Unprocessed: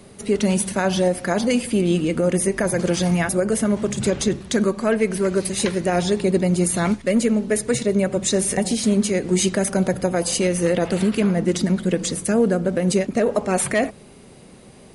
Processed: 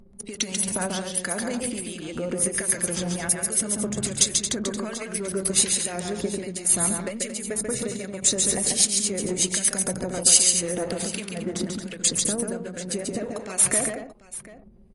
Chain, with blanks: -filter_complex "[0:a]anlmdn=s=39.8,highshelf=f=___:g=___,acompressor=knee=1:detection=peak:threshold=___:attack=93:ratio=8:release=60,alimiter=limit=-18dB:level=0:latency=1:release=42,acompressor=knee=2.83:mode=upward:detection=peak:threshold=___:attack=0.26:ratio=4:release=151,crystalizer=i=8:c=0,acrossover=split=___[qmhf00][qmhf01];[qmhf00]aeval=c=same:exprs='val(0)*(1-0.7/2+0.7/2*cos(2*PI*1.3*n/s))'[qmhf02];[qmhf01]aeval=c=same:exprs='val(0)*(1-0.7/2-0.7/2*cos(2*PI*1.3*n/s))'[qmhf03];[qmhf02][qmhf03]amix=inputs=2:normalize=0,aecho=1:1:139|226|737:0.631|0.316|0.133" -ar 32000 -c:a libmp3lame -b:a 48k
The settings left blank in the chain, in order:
2100, -9.5, -34dB, -42dB, 1600